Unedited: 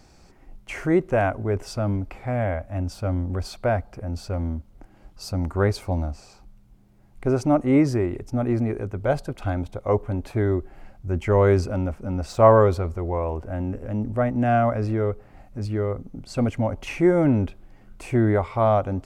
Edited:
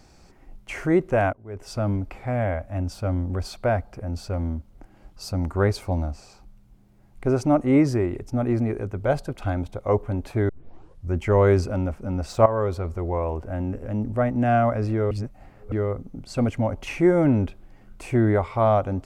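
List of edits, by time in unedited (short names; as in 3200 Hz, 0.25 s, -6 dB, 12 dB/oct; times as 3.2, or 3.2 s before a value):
1.33–1.76 fade in quadratic, from -22 dB
10.49 tape start 0.64 s
12.46–12.98 fade in linear, from -15.5 dB
15.11–15.72 reverse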